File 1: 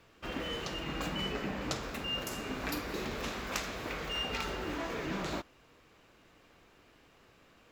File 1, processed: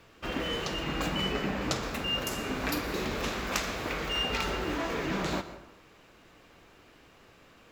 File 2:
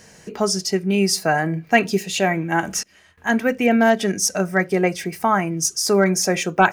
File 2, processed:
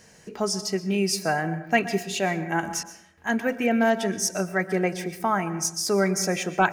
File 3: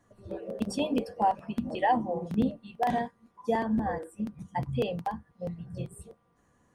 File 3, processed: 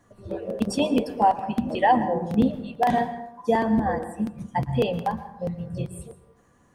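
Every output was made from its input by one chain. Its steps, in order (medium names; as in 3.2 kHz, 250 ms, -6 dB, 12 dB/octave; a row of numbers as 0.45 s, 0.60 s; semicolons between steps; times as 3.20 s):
plate-style reverb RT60 0.81 s, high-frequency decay 0.5×, pre-delay 105 ms, DRR 12.5 dB; peak normalisation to -9 dBFS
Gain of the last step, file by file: +5.0 dB, -6.0 dB, +6.0 dB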